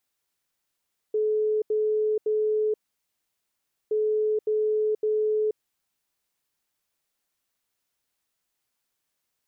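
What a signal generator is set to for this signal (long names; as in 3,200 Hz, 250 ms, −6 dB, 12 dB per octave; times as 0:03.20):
beeps in groups sine 429 Hz, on 0.48 s, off 0.08 s, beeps 3, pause 1.17 s, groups 2, −21 dBFS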